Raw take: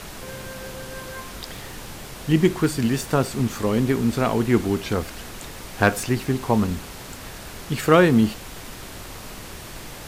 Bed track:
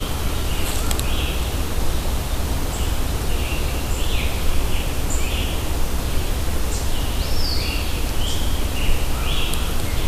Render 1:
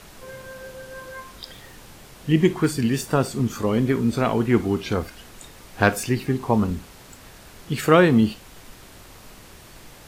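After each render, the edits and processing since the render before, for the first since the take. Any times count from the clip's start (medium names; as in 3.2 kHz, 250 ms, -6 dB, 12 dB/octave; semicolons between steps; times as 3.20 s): noise print and reduce 8 dB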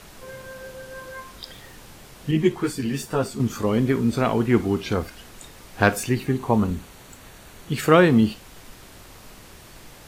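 2.31–3.40 s: three-phase chorus; 6.01–7.74 s: band-stop 5.1 kHz, Q 8.8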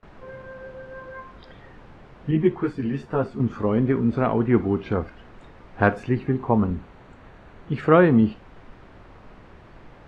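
low-pass 1.7 kHz 12 dB/octave; gate with hold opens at -40 dBFS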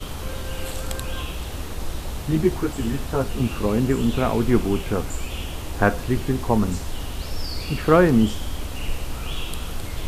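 add bed track -8 dB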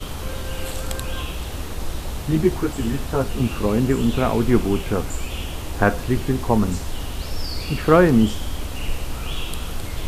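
trim +1.5 dB; peak limiter -2 dBFS, peak gain reduction 1 dB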